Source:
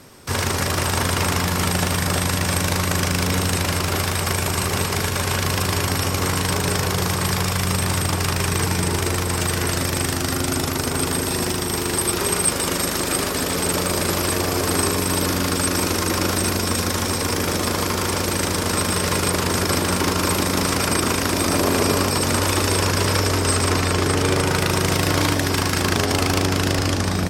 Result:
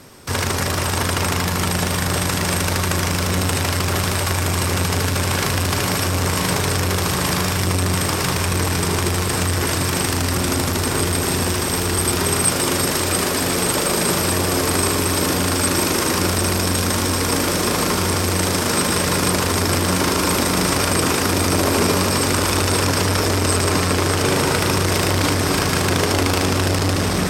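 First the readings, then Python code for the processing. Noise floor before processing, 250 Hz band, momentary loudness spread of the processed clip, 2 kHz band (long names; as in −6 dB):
−24 dBFS, +2.0 dB, 2 LU, +1.5 dB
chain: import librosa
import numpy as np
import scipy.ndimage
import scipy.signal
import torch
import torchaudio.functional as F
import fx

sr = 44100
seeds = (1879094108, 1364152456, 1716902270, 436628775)

p1 = x + fx.echo_diffused(x, sr, ms=1812, feedback_pct=69, wet_db=-6.5, dry=0)
p2 = fx.transformer_sat(p1, sr, knee_hz=530.0)
y = F.gain(torch.from_numpy(p2), 2.0).numpy()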